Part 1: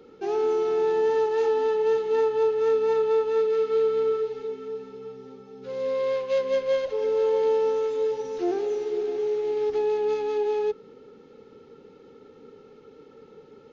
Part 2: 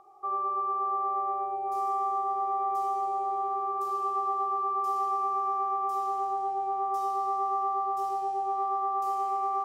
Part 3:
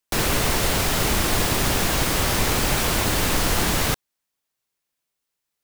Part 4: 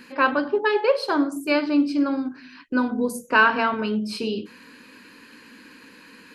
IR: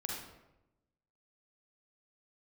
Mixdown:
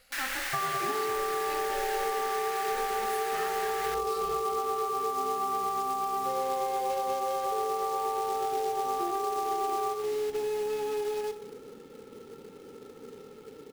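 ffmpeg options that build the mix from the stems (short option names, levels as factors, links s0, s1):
-filter_complex "[0:a]acompressor=threshold=0.0355:ratio=5,adelay=600,volume=0.891,asplit=2[s0][s1];[s1]volume=0.447[s2];[1:a]adelay=300,volume=1.33,asplit=2[s3][s4];[s4]volume=0.335[s5];[2:a]highpass=f=1700:t=q:w=3.5,volume=0.224[s6];[3:a]aemphasis=mode=production:type=75fm,aeval=exprs='val(0)*sin(2*PI*270*n/s)':c=same,volume=0.133,asplit=2[s7][s8];[s8]volume=0.531[s9];[4:a]atrim=start_sample=2205[s10];[s2][s5][s9]amix=inputs=3:normalize=0[s11];[s11][s10]afir=irnorm=-1:irlink=0[s12];[s0][s3][s6][s7][s12]amix=inputs=5:normalize=0,acrusher=bits=3:mode=log:mix=0:aa=0.000001,acompressor=threshold=0.0447:ratio=6"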